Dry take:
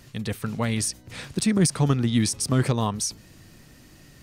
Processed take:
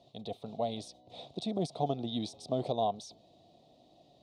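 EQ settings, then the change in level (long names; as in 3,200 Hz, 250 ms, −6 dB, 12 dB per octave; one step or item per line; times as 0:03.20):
pair of resonant band-passes 1,600 Hz, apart 2.4 octaves
tilt shelving filter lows +9 dB
+4.0 dB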